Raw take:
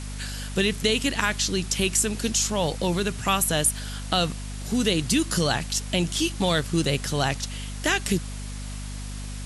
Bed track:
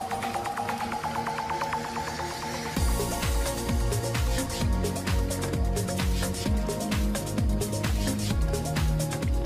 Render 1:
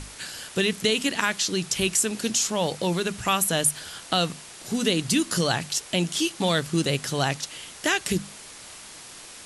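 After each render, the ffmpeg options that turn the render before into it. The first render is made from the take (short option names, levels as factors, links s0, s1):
-af "bandreject=f=50:t=h:w=6,bandreject=f=100:t=h:w=6,bandreject=f=150:t=h:w=6,bandreject=f=200:t=h:w=6,bandreject=f=250:t=h:w=6"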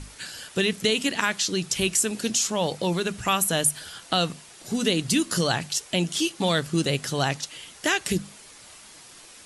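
-af "afftdn=nr=6:nf=-44"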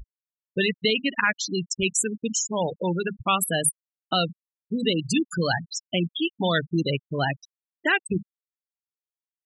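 -af "afftfilt=real='re*gte(hypot(re,im),0.126)':imag='im*gte(hypot(re,im),0.126)':win_size=1024:overlap=0.75,adynamicequalizer=threshold=0.00891:dfrequency=1800:dqfactor=1.3:tfrequency=1800:tqfactor=1.3:attack=5:release=100:ratio=0.375:range=2.5:mode=boostabove:tftype=bell"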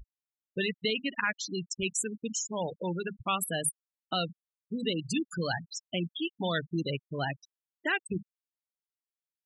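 -af "volume=0.422"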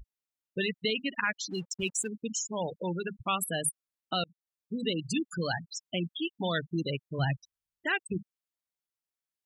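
-filter_complex "[0:a]asplit=3[s0][s1][s2];[s0]afade=t=out:st=1.5:d=0.02[s3];[s1]aeval=exprs='sgn(val(0))*max(abs(val(0))-0.00158,0)':c=same,afade=t=in:st=1.5:d=0.02,afade=t=out:st=2.07:d=0.02[s4];[s2]afade=t=in:st=2.07:d=0.02[s5];[s3][s4][s5]amix=inputs=3:normalize=0,asplit=3[s6][s7][s8];[s6]afade=t=out:st=7.18:d=0.02[s9];[s7]asubboost=boost=6.5:cutoff=130,afade=t=in:st=7.18:d=0.02,afade=t=out:st=7.89:d=0.02[s10];[s8]afade=t=in:st=7.89:d=0.02[s11];[s9][s10][s11]amix=inputs=3:normalize=0,asplit=2[s12][s13];[s12]atrim=end=4.24,asetpts=PTS-STARTPTS,afade=t=out:st=4.236:d=0.004:c=hsin[s14];[s13]atrim=start=4.24,asetpts=PTS-STARTPTS,afade=t=in:d=0.55:c=qsin[s15];[s14][s15]concat=n=2:v=0:a=1"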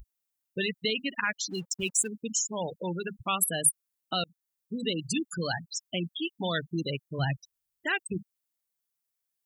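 -af "highshelf=f=7400:g=11.5"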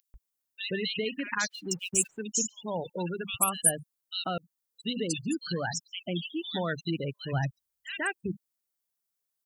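-filter_complex "[0:a]acrossover=split=2400[s0][s1];[s0]adelay=140[s2];[s2][s1]amix=inputs=2:normalize=0"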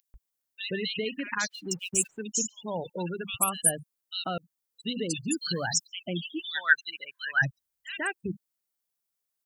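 -filter_complex "[0:a]asettb=1/sr,asplit=3[s0][s1][s2];[s0]atrim=end=5.284[s3];[s1]atrim=start=5.28:end=5.87,asetpts=PTS-STARTPTS,afade=t=in:d=0.004:c=qsin,afade=t=out:st=0.586:d=0.004:c=qsin,highshelf=f=3700:g=11.5[s4];[s2]atrim=start=5.866[s5];[s3][s4]acrossfade=d=0.004:c1=hsin:c2=qsin[s6];[s6][s5]acrossfade=d=0.004:c1=qsin:c2=hsin,asplit=3[s7][s8][s9];[s7]afade=t=out:st=6.38:d=0.02[s10];[s8]highpass=f=1600:t=q:w=12,afade=t=in:st=6.38:d=0.02,afade=t=out:st=7.41:d=0.02[s11];[s9]afade=t=in:st=7.41:d=0.02[s12];[s10][s11][s12]amix=inputs=3:normalize=0"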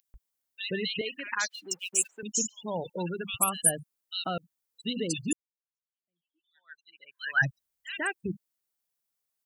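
-filter_complex "[0:a]asettb=1/sr,asplit=3[s0][s1][s2];[s0]atrim=end=1.014[s3];[s1]atrim=start=1.01:end=2.23,asetpts=PTS-STARTPTS,afade=t=in:d=0.004:c=qsin,afade=t=out:st=1.216:d=0.004:c=qsin,highpass=500[s4];[s2]atrim=start=2.226[s5];[s3][s4]acrossfade=d=0.004:c1=hsin:c2=qsin[s6];[s6][s5]acrossfade=d=0.004:c1=qsin:c2=hsin,asplit=2[s7][s8];[s7]atrim=end=5.33,asetpts=PTS-STARTPTS,afade=t=out:st=5.326:d=0.004:c=hsin[s9];[s8]atrim=start=5.33,asetpts=PTS-STARTPTS,afade=t=in:d=1.95:c=exp[s10];[s9][s10]concat=n=2:v=0:a=1"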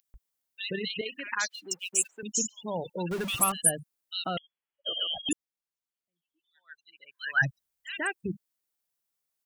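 -filter_complex "[0:a]asettb=1/sr,asplit=3[s0][s1][s2];[s0]atrim=end=0.724[s3];[s1]atrim=start=0.72:end=1.16,asetpts=PTS-STARTPTS,afade=t=in:d=0.004:c=qsin,afade=t=out:st=0.436:d=0.004:c=qsin,tremolo=f=32:d=0.4[s4];[s2]atrim=start=1.156[s5];[s3][s4]acrossfade=d=0.004:c1=hsin:c2=qsin[s6];[s6][s5]acrossfade=d=0.004:c1=qsin:c2=hsin,asettb=1/sr,asplit=3[s7][s8][s9];[s7]atrim=end=3.114[s10];[s8]atrim=start=3.11:end=3.52,asetpts=PTS-STARTPTS,afade=t=in:d=0.004:c=qsin,afade=t=out:st=0.406:d=0.004:c=qsin,aeval=exprs='val(0)+0.5*0.0237*sgn(val(0))':c=same[s11];[s9]atrim=start=3.516[s12];[s10][s11]acrossfade=d=0.004:c1=hsin:c2=qsin[s13];[s13][s12]acrossfade=d=0.004:c1=qsin:c2=hsin,asettb=1/sr,asplit=3[s14][s15][s16];[s14]atrim=end=4.374[s17];[s15]atrim=start=4.37:end=5.29,asetpts=PTS-STARTPTS,afade=t=in:d=0.004:c=qsin,afade=t=out:st=0.916:d=0.004:c=qsin,lowpass=f=2900:t=q:w=0.5098,lowpass=f=2900:t=q:w=0.6013,lowpass=f=2900:t=q:w=0.9,lowpass=f=2900:t=q:w=2.563,afreqshift=-3400[s18];[s16]atrim=start=5.286[s19];[s17][s18]acrossfade=d=0.004:c1=hsin:c2=qsin[s20];[s20][s19]acrossfade=d=0.004:c1=qsin:c2=hsin"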